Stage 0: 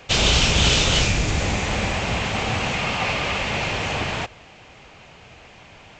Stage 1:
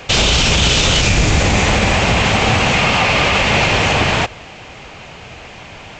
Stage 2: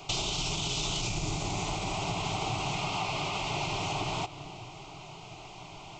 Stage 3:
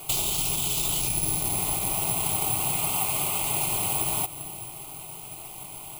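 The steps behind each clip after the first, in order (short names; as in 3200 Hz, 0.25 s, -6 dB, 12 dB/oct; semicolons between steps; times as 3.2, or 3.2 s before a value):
maximiser +14 dB; gain -3 dB
on a send at -17 dB: reverb RT60 2.4 s, pre-delay 4 ms; on the sum: compressor 4:1, threshold -19 dBFS, peak gain reduction 8.5 dB; fixed phaser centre 340 Hz, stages 8; gain -7.5 dB
careless resampling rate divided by 4×, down filtered, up zero stuff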